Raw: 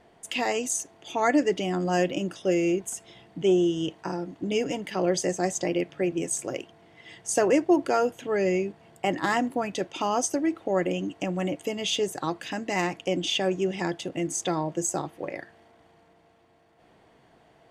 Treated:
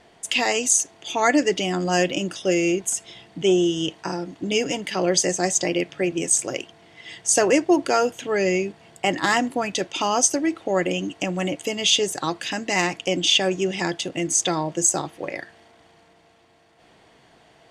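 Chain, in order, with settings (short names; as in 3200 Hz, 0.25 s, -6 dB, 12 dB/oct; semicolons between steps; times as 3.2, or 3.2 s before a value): Bessel low-pass 7800 Hz, order 2; high shelf 2400 Hz +11.5 dB; hard clip -8.5 dBFS, distortion -53 dB; gain +2.5 dB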